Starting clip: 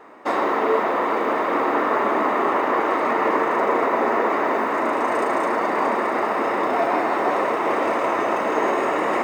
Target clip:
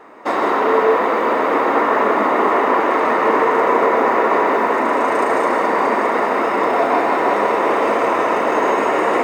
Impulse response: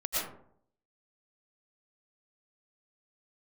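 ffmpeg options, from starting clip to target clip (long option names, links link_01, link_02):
-filter_complex "[0:a]asplit=2[link_01][link_02];[1:a]atrim=start_sample=2205,afade=type=out:start_time=0.2:duration=0.01,atrim=end_sample=9261,asetrate=33075,aresample=44100[link_03];[link_02][link_03]afir=irnorm=-1:irlink=0,volume=-7.5dB[link_04];[link_01][link_04]amix=inputs=2:normalize=0"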